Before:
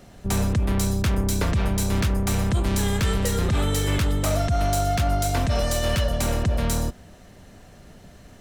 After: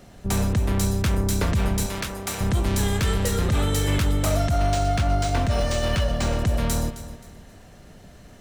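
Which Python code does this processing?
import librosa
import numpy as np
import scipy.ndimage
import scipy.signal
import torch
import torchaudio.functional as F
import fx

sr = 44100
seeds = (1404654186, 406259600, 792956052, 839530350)

p1 = fx.highpass(x, sr, hz=570.0, slope=6, at=(1.86, 2.41))
p2 = p1 + fx.echo_feedback(p1, sr, ms=264, feedback_pct=32, wet_db=-14.0, dry=0)
y = fx.resample_linear(p2, sr, factor=3, at=(4.58, 6.39))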